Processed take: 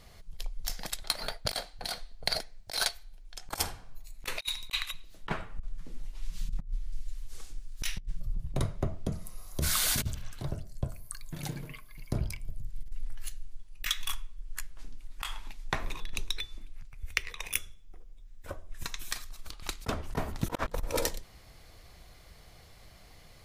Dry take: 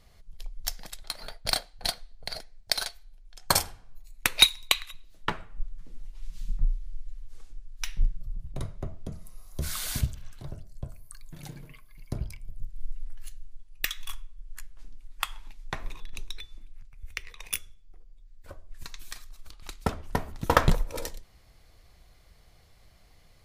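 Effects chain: 6.92–8.20 s: treble shelf 3.2 kHz +8 dB; 17.32–19.11 s: band-stop 4.5 kHz, Q 7.6; bass shelf 74 Hz -5 dB; compressor with a negative ratio -32 dBFS, ratio -0.5; trim +3 dB

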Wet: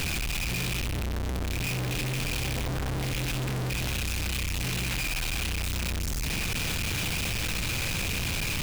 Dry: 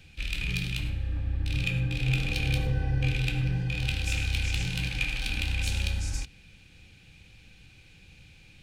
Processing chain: one-bit comparator

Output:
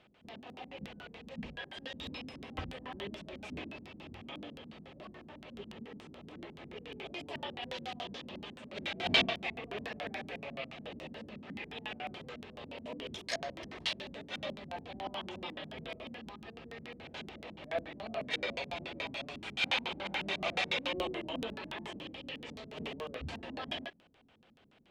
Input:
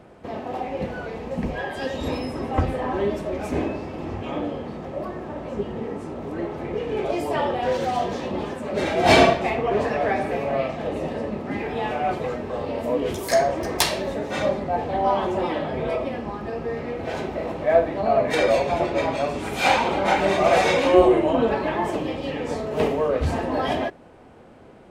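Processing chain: LFO low-pass square 7 Hz 220–3200 Hz; pre-emphasis filter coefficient 0.9; trim -1 dB

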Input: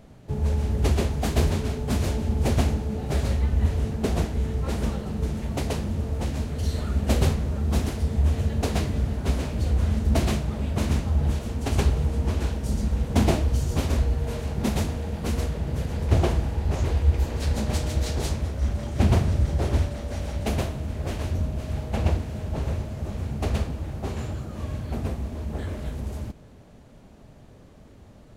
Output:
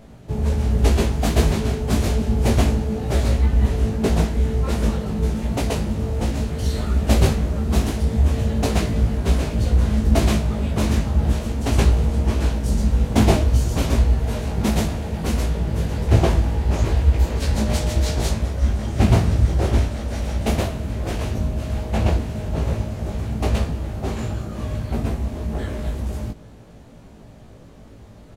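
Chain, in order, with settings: doubling 18 ms -3 dB; trim +3.5 dB

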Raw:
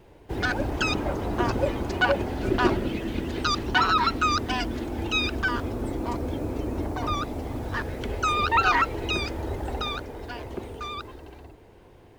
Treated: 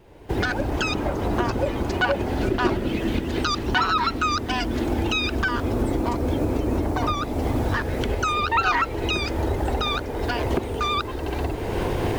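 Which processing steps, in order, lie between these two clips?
recorder AGC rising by 27 dB/s

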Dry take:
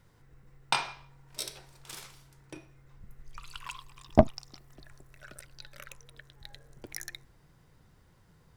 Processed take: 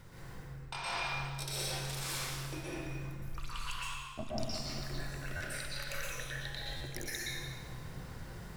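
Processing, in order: reverse; compression 8:1, threshold -50 dBFS, peak gain reduction 35.5 dB; reverse; reverberation RT60 1.6 s, pre-delay 111 ms, DRR -8 dB; buffer glitch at 5.36/6.76 s, times 3; trim +8 dB

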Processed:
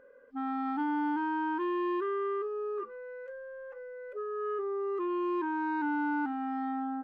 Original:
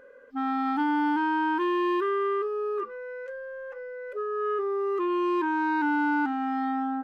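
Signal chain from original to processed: treble shelf 2.6 kHz -10.5 dB; trim -5 dB

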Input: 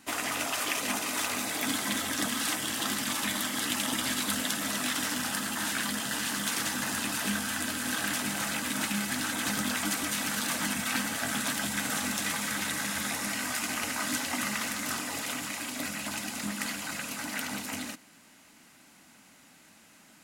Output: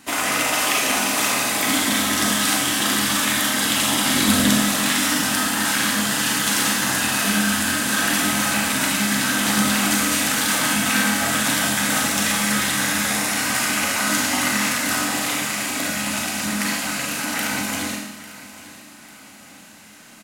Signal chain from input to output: 4.14–4.58 s: bass shelf 400 Hz +10.5 dB; feedback delay 847 ms, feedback 42%, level -17 dB; reverberation RT60 0.90 s, pre-delay 30 ms, DRR -1 dB; trim +7.5 dB

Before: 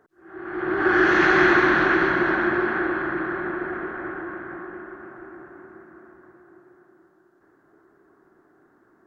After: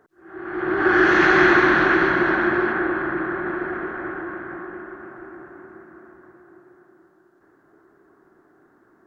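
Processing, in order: 2.72–3.47 s: treble shelf 5.3 kHz -11.5 dB; trim +2 dB

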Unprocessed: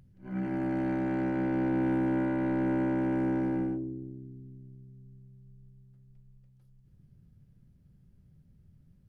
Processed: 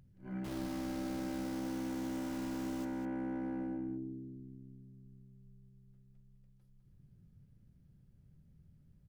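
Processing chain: 0.44–2.85 s: send-on-delta sampling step -32.5 dBFS; compression, threshold -33 dBFS, peak gain reduction 7.5 dB; echo from a far wall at 35 m, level -6 dB; trim -4 dB

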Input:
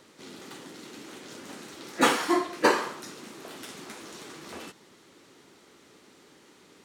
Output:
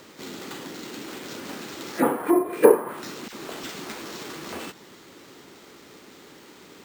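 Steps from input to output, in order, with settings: low-pass that closes with the level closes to 810 Hz, closed at -22 dBFS; in parallel at -1 dB: compression, threshold -42 dBFS, peak gain reduction 21.5 dB; 2.26–2.76 s: on the sum: small resonant body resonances 440/2400 Hz, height 13 dB; 3.28–3.72 s: phase dispersion lows, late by 46 ms, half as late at 1.7 kHz; sample-and-hold 4×; trim +2.5 dB

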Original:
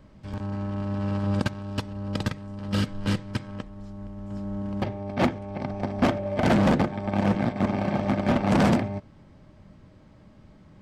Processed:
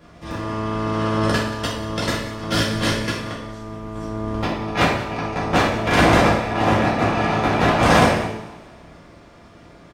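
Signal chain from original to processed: spectral peaks clipped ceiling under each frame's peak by 14 dB; on a send: delay 200 ms -17 dB; on the sum: two-slope reverb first 0.69 s, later 2 s, DRR -7 dB; speed mistake 44.1 kHz file played as 48 kHz; trim -1.5 dB

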